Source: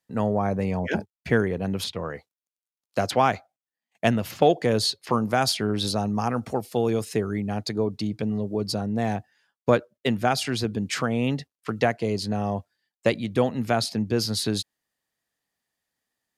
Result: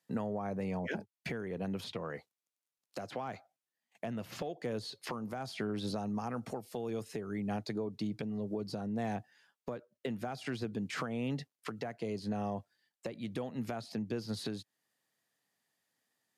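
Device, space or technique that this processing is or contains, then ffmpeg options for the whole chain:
podcast mastering chain: -af "highpass=f=110:w=0.5412,highpass=f=110:w=1.3066,deesser=1,acompressor=threshold=-33dB:ratio=4,alimiter=level_in=3dB:limit=-24dB:level=0:latency=1:release=398,volume=-3dB,volume=1dB" -ar 32000 -c:a libmp3lame -b:a 96k

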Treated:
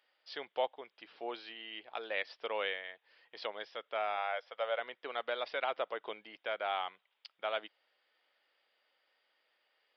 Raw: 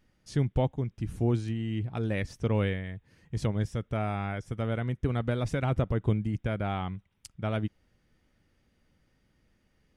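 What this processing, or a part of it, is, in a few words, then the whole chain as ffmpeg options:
musical greeting card: -filter_complex "[0:a]aresample=11025,aresample=44100,highpass=f=560:w=0.5412,highpass=f=560:w=1.3066,equalizer=f=3.2k:t=o:w=0.52:g=5,asettb=1/sr,asplit=3[a][b][c];[a]atrim=end=4.174[d];[b]atrim=start=4.17:end=4.8,asetpts=PTS-STARTPTS,afade=t=in:d=0.004:c=qsin,afade=t=out:st=0.626:d=0.004:c=qsin,lowshelf=f=440:t=q:w=3:g=-6[e];[c]atrim=start=4.796[f];[d][e]acrossfade=d=0.004:c1=hsin:c2=qsin[g];[g][f]acrossfade=d=0.004:c1=qsin:c2=hsin"

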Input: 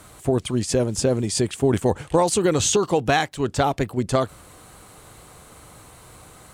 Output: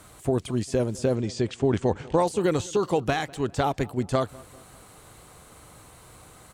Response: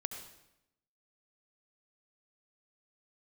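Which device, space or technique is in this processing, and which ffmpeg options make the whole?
de-esser from a sidechain: -filter_complex "[0:a]asettb=1/sr,asplit=3[a][b][c];[a]atrim=end=1.154[d];[b]atrim=start=1.15:end=2.2,asetpts=PTS-STARTPTS,afade=t=in:d=0.004:c=qsin,afade=t=out:st=1.046:d=0.004:c=qsin,lowpass=f=6.6k:w=0.5412,lowpass=f=6.6k:w=1.3066[e];[c]atrim=start=2.196[f];[d][e]acrossfade=d=0.004:c1=hsin:c2=qsin[g];[g][f]acrossfade=d=0.004:c1=qsin:c2=hsin,asplit=2[h][i];[i]highpass=4.9k,apad=whole_len=288358[j];[h][j]sidechaincompress=threshold=-36dB:ratio=6:attack=4.3:release=23,asplit=2[k][l];[l]adelay=199,lowpass=f=2.2k:p=1,volume=-22.5dB,asplit=2[m][n];[n]adelay=199,lowpass=f=2.2k:p=1,volume=0.51,asplit=2[o][p];[p]adelay=199,lowpass=f=2.2k:p=1,volume=0.51[q];[k][m][o][q]amix=inputs=4:normalize=0,volume=-3.5dB"

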